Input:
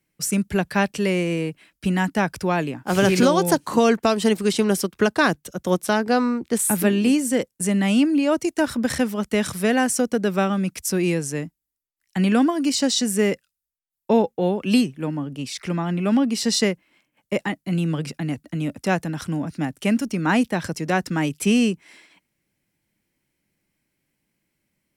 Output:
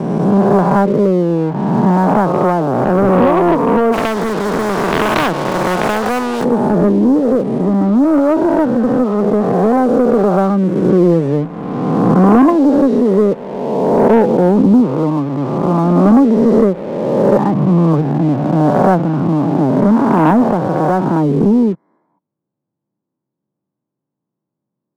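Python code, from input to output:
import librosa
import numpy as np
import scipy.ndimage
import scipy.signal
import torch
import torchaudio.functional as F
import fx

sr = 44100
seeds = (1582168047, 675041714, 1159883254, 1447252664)

y = fx.spec_swells(x, sr, rise_s=2.0)
y = scipy.signal.sosfilt(scipy.signal.ellip(3, 1.0, 40, [120.0, 1100.0], 'bandpass', fs=sr, output='sos'), y)
y = fx.leveller(y, sr, passes=2)
y = fx.rider(y, sr, range_db=10, speed_s=2.0)
y = fx.spectral_comp(y, sr, ratio=2.0, at=(3.92, 6.43), fade=0.02)
y = y * 10.0 ** (1.0 / 20.0)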